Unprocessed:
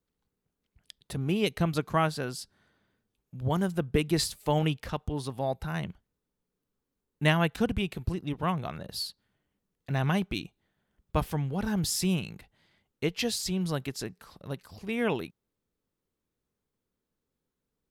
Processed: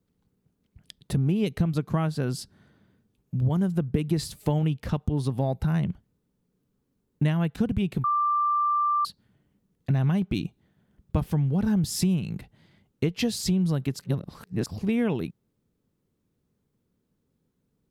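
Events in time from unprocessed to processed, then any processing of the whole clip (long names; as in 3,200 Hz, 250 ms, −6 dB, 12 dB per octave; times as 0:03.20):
0:08.04–0:09.05: beep over 1,180 Hz −22.5 dBFS
0:13.99–0:14.66: reverse
whole clip: parametric band 150 Hz +12.5 dB 2.8 octaves; downward compressor 6 to 1, threshold −24 dBFS; level +2.5 dB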